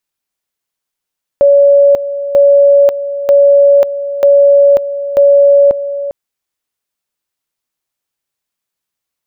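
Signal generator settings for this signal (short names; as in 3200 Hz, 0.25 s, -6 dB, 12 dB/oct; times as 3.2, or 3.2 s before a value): two-level tone 565 Hz -3 dBFS, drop 12.5 dB, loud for 0.54 s, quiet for 0.40 s, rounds 5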